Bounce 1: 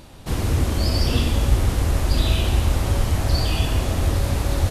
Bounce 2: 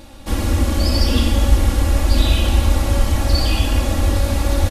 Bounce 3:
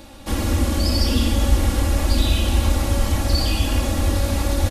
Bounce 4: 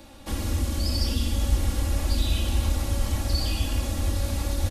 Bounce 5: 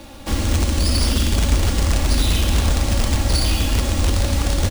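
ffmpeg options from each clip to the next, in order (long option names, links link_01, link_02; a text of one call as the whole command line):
ffmpeg -i in.wav -af "aecho=1:1:3.6:0.92,volume=1dB" out.wav
ffmpeg -i in.wav -filter_complex "[0:a]lowshelf=frequency=66:gain=-6,acrossover=split=320|4100[link_01][link_02][link_03];[link_02]alimiter=limit=-21.5dB:level=0:latency=1[link_04];[link_01][link_04][link_03]amix=inputs=3:normalize=0" out.wav
ffmpeg -i in.wav -filter_complex "[0:a]acrossover=split=170|3000[link_01][link_02][link_03];[link_02]acompressor=threshold=-28dB:ratio=6[link_04];[link_01][link_04][link_03]amix=inputs=3:normalize=0,volume=-5.5dB" out.wav
ffmpeg -i in.wav -filter_complex "[0:a]asplit=2[link_01][link_02];[link_02]aeval=exprs='(mod(8.41*val(0)+1,2)-1)/8.41':channel_layout=same,volume=-5dB[link_03];[link_01][link_03]amix=inputs=2:normalize=0,acrusher=samples=3:mix=1:aa=0.000001,volume=4.5dB" out.wav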